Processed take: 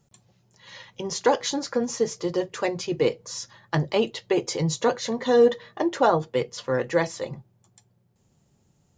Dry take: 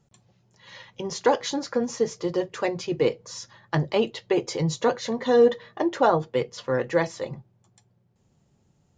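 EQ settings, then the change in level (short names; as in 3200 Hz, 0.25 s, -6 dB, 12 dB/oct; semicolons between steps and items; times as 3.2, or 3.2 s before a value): high shelf 6400 Hz +8 dB; 0.0 dB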